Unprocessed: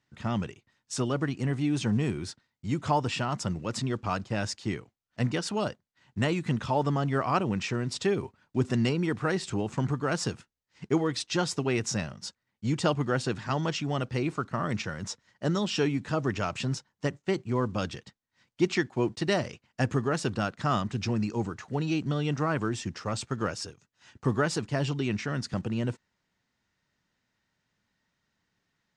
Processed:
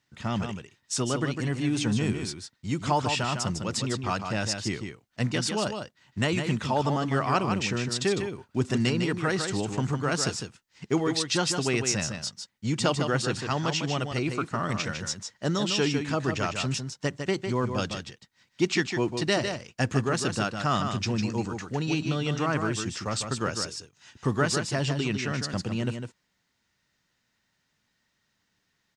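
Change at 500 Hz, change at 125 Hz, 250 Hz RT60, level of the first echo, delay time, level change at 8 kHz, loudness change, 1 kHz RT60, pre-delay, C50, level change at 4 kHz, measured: +1.0 dB, +1.0 dB, none, -6.5 dB, 0.153 s, +7.0 dB, +2.0 dB, none, none, none, +6.0 dB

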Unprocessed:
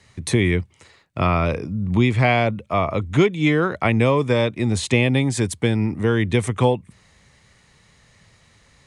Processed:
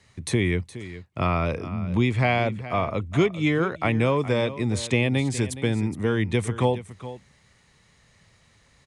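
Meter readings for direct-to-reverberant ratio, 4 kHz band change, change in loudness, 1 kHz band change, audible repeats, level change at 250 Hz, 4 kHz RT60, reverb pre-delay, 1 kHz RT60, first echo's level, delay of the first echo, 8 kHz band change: none, -4.5 dB, -4.5 dB, -4.5 dB, 1, -4.5 dB, none, none, none, -14.5 dB, 0.417 s, -4.5 dB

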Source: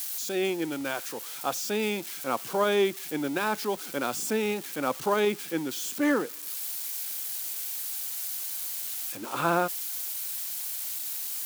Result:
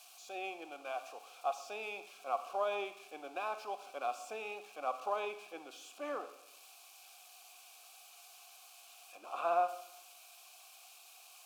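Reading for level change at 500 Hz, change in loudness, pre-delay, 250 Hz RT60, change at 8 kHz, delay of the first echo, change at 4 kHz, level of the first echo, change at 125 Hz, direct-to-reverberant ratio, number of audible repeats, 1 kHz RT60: -11.0 dB, -10.5 dB, 38 ms, 0.80 s, -21.0 dB, none, -15.0 dB, none, under -30 dB, 10.5 dB, none, 0.80 s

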